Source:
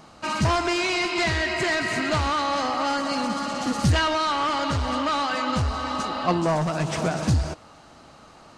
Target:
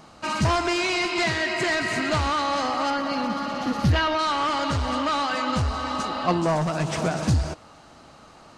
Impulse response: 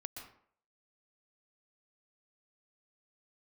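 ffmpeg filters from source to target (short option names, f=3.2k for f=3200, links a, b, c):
-filter_complex "[0:a]asettb=1/sr,asplit=3[a][b][c];[a]atrim=end=1.234[d];[b]atrim=start=1.23:end=1.64,asetpts=PTS-STARTPTS,afade=t=in:d=0.004:c=qsin,afade=t=out:st=0.406:d=0.004:c=qsin,highpass=f=110:w=0.5412,highpass=f=110:w=1.3066[e];[c]atrim=start=1.636[f];[d][e]acrossfade=d=0.004:c1=hsin:c2=qsin[g];[g][f]acrossfade=d=0.004:c1=qsin:c2=hsin,asettb=1/sr,asplit=3[h][i][j];[h]atrim=end=2.904[k];[i]atrim=start=2.9:end=4.19,asetpts=PTS-STARTPTS,afade=t=in:d=0.004:c=qsin,afade=t=out:st=1.286:d=0.004:c=qsin,equalizer=f=8.1k:w=1.3:g=-14.5[l];[j]atrim=start=4.186[m];[k][l]acrossfade=d=0.004:c1=hsin:c2=qsin[n];[n][m]acrossfade=d=0.004:c1=qsin:c2=hsin"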